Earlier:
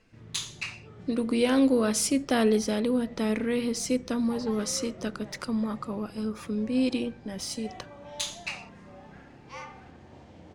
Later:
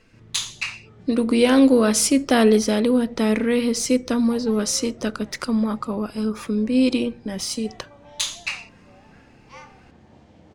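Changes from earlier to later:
speech +7.5 dB; background: send -8.0 dB

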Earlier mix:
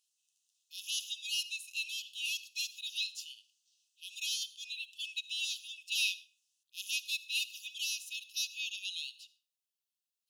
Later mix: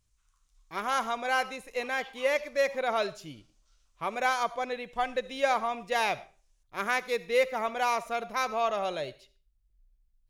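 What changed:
speech -5.5 dB; master: remove brick-wall FIR high-pass 2.5 kHz

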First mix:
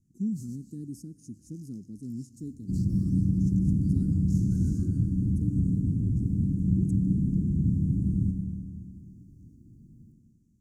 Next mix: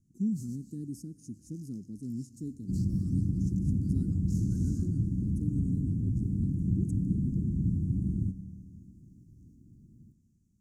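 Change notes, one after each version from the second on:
second sound: send -11.0 dB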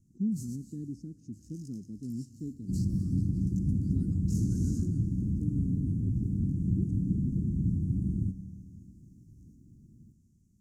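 speech: add distance through air 160 m; first sound +4.5 dB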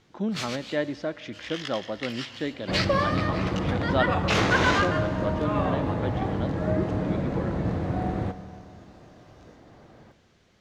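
speech: add peaking EQ 420 Hz -6.5 dB 0.25 oct; master: remove inverse Chebyshev band-stop 560–3600 Hz, stop band 50 dB

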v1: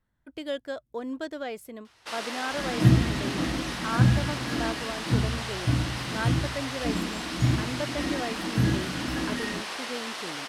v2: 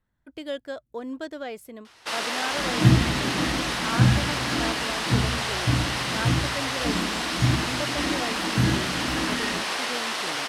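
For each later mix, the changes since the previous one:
first sound +7.0 dB; second sound: send +9.0 dB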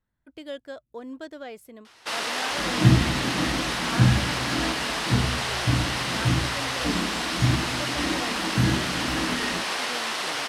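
speech -4.0 dB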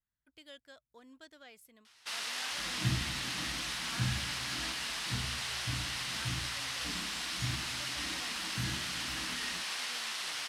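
master: add amplifier tone stack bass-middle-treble 5-5-5

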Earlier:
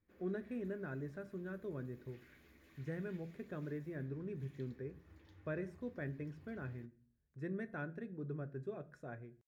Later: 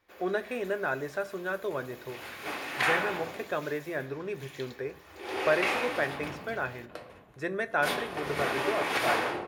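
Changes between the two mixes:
second sound: unmuted; master: remove FFT filter 220 Hz 0 dB, 780 Hz -23 dB, 1.8 kHz -17 dB, 2.8 kHz -23 dB

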